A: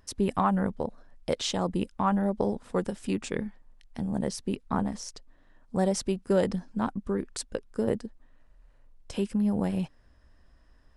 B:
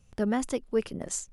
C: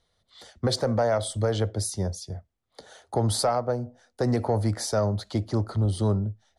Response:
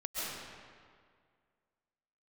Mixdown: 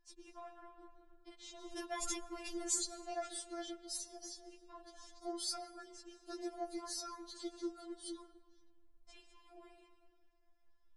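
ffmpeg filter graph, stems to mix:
-filter_complex "[0:a]alimiter=limit=-19dB:level=0:latency=1:release=430,lowpass=frequency=8500:width=0.5412,lowpass=frequency=8500:width=1.3066,volume=-16.5dB,asplit=2[link_01][link_02];[link_02]volume=-9.5dB[link_03];[1:a]adelay=1600,volume=-0.5dB,asplit=2[link_04][link_05];[link_05]volume=-23.5dB[link_06];[2:a]adelay=2100,volume=-16dB,asplit=2[link_07][link_08];[link_08]volume=-19.5dB[link_09];[link_04][link_07]amix=inputs=2:normalize=0,equalizer=frequency=6000:width_type=o:width=2:gain=9,acompressor=threshold=-30dB:ratio=6,volume=0dB[link_10];[3:a]atrim=start_sample=2205[link_11];[link_03][link_06][link_09]amix=inputs=3:normalize=0[link_12];[link_12][link_11]afir=irnorm=-1:irlink=0[link_13];[link_01][link_10][link_13]amix=inputs=3:normalize=0,afftfilt=real='re*4*eq(mod(b,16),0)':imag='im*4*eq(mod(b,16),0)':win_size=2048:overlap=0.75"

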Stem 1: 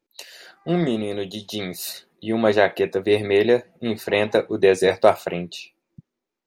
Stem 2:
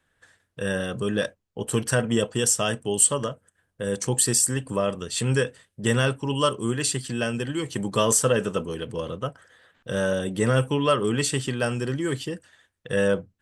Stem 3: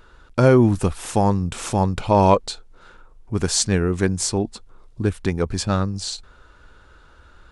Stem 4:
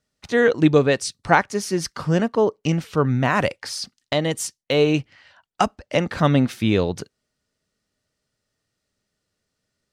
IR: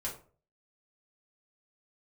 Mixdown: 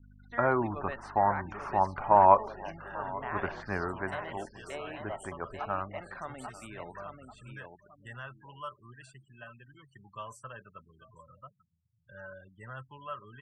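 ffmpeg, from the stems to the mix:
-filter_complex "[0:a]equalizer=frequency=4800:width=0.37:gain=-13.5,adelay=50,volume=-18.5dB,asplit=3[link_01][link_02][link_03];[link_02]volume=-14.5dB[link_04];[link_03]volume=-4.5dB[link_05];[1:a]asubboost=boost=9:cutoff=100,adelay=2200,volume=-13.5dB,asplit=3[link_06][link_07][link_08];[link_07]volume=-19.5dB[link_09];[link_08]volume=-15.5dB[link_10];[2:a]lowpass=1600,dynaudnorm=framelen=670:gausssize=5:maxgain=15dB,aeval=exprs='val(0)+0.0224*(sin(2*PI*50*n/s)+sin(2*PI*2*50*n/s)/2+sin(2*PI*3*50*n/s)/3+sin(2*PI*4*50*n/s)/4+sin(2*PI*5*50*n/s)/5)':channel_layout=same,volume=-1.5dB,afade=type=out:start_time=3.7:duration=0.52:silence=0.421697,asplit=3[link_11][link_12][link_13];[link_12]volume=-16dB[link_14];[link_13]volume=-18dB[link_15];[3:a]alimiter=limit=-12dB:level=0:latency=1:release=37,acompressor=mode=upward:threshold=-43dB:ratio=2.5,volume=-10.5dB,asplit=3[link_16][link_17][link_18];[link_17]volume=-16.5dB[link_19];[link_18]volume=-5dB[link_20];[4:a]atrim=start_sample=2205[link_21];[link_04][link_09][link_14][link_19]amix=inputs=4:normalize=0[link_22];[link_22][link_21]afir=irnorm=-1:irlink=0[link_23];[link_05][link_10][link_15][link_20]amix=inputs=4:normalize=0,aecho=0:1:840|1680|2520|3360|4200:1|0.32|0.102|0.0328|0.0105[link_24];[link_01][link_06][link_11][link_16][link_23][link_24]amix=inputs=6:normalize=0,equalizer=frequency=480:width_type=o:width=0.22:gain=-14,afftfilt=real='re*gte(hypot(re,im),0.01)':imag='im*gte(hypot(re,im),0.01)':win_size=1024:overlap=0.75,acrossover=split=570 2100:gain=0.1 1 0.0794[link_25][link_26][link_27];[link_25][link_26][link_27]amix=inputs=3:normalize=0"

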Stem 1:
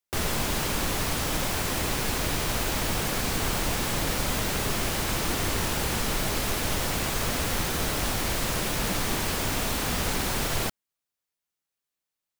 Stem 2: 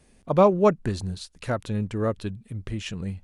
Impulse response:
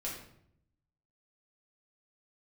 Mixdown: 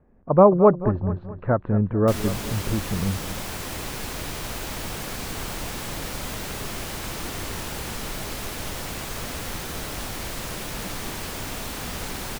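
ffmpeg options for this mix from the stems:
-filter_complex "[0:a]adelay=1950,volume=-10.5dB[link_01];[1:a]lowpass=frequency=1400:width=0.5412,lowpass=frequency=1400:width=1.3066,volume=0dB,asplit=2[link_02][link_03];[link_03]volume=-13.5dB,aecho=0:1:216|432|648|864|1080|1296:1|0.41|0.168|0.0689|0.0283|0.0116[link_04];[link_01][link_02][link_04]amix=inputs=3:normalize=0,dynaudnorm=framelen=170:gausssize=3:maxgain=6dB"

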